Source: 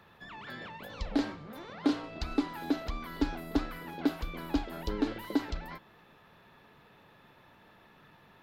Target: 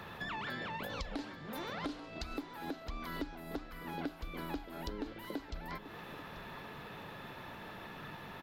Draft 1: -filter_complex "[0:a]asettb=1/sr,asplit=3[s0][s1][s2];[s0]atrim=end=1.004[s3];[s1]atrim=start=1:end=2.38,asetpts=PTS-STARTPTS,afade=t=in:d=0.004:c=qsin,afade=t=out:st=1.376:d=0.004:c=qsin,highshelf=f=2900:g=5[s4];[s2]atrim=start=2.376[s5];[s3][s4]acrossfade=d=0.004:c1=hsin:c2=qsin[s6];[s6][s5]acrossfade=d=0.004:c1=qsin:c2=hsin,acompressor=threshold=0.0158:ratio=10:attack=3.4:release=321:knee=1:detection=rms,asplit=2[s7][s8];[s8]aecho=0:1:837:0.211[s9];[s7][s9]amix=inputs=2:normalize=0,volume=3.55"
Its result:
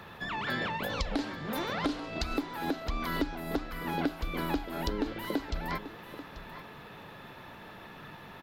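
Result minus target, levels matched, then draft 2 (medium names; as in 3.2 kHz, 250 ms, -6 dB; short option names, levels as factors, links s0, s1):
compression: peak gain reduction -9 dB
-filter_complex "[0:a]asettb=1/sr,asplit=3[s0][s1][s2];[s0]atrim=end=1.004[s3];[s1]atrim=start=1:end=2.38,asetpts=PTS-STARTPTS,afade=t=in:d=0.004:c=qsin,afade=t=out:st=1.376:d=0.004:c=qsin,highshelf=f=2900:g=5[s4];[s2]atrim=start=2.376[s5];[s3][s4]acrossfade=d=0.004:c1=hsin:c2=qsin[s6];[s6][s5]acrossfade=d=0.004:c1=qsin:c2=hsin,acompressor=threshold=0.00501:ratio=10:attack=3.4:release=321:knee=1:detection=rms,asplit=2[s7][s8];[s8]aecho=0:1:837:0.211[s9];[s7][s9]amix=inputs=2:normalize=0,volume=3.55"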